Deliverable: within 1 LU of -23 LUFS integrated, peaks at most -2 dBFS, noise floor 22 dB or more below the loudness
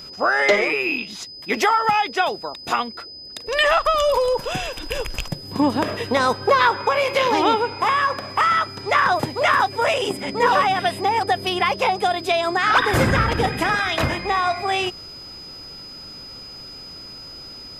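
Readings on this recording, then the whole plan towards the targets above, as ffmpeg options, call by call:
steady tone 5 kHz; tone level -36 dBFS; loudness -20.0 LUFS; peak level -3.0 dBFS; loudness target -23.0 LUFS
-> -af "bandreject=f=5000:w=30"
-af "volume=0.708"

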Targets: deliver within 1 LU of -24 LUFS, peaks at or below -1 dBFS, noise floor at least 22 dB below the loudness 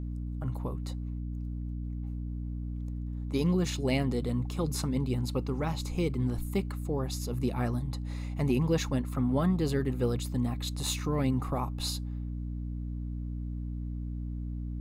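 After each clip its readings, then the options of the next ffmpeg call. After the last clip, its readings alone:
hum 60 Hz; highest harmonic 300 Hz; hum level -33 dBFS; loudness -32.5 LUFS; peak level -15.5 dBFS; loudness target -24.0 LUFS
-> -af "bandreject=f=60:t=h:w=6,bandreject=f=120:t=h:w=6,bandreject=f=180:t=h:w=6,bandreject=f=240:t=h:w=6,bandreject=f=300:t=h:w=6"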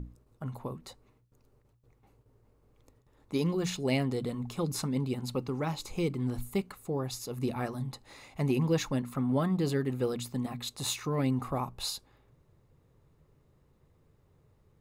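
hum not found; loudness -32.5 LUFS; peak level -16.5 dBFS; loudness target -24.0 LUFS
-> -af "volume=2.66"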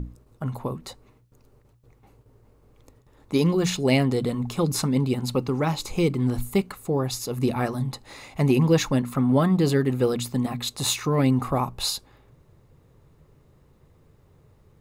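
loudness -24.0 LUFS; peak level -8.0 dBFS; noise floor -58 dBFS

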